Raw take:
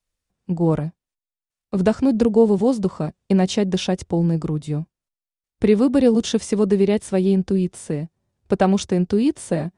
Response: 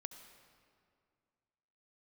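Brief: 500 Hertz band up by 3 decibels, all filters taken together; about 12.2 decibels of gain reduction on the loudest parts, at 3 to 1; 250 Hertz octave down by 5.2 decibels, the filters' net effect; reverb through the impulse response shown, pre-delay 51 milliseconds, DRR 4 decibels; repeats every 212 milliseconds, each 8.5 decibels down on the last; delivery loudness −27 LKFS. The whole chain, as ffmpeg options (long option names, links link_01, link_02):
-filter_complex "[0:a]equalizer=frequency=250:width_type=o:gain=-9,equalizer=frequency=500:width_type=o:gain=6.5,acompressor=threshold=-25dB:ratio=3,aecho=1:1:212|424|636|848:0.376|0.143|0.0543|0.0206,asplit=2[link_01][link_02];[1:a]atrim=start_sample=2205,adelay=51[link_03];[link_02][link_03]afir=irnorm=-1:irlink=0,volume=0dB[link_04];[link_01][link_04]amix=inputs=2:normalize=0,volume=-0.5dB"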